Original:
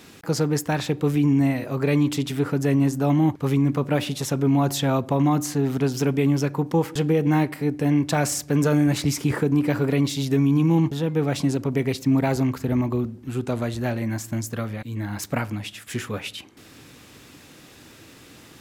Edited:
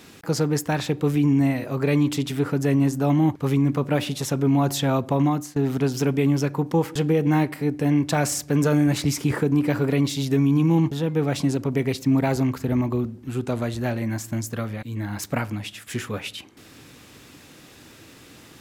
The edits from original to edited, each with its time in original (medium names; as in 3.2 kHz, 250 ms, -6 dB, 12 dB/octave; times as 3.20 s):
5.24–5.56 s: fade out, to -19.5 dB